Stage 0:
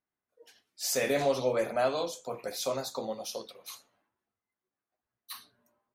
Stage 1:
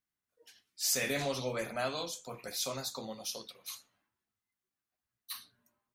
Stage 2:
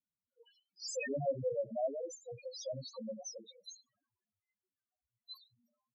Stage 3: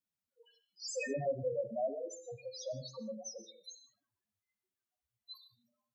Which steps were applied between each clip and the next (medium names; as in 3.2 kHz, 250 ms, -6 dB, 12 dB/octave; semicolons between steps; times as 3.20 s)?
peaking EQ 550 Hz -10.5 dB 2.2 oct; trim +1.5 dB
loudest bins only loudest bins 2; trim +4.5 dB
gated-style reverb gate 190 ms flat, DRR 11.5 dB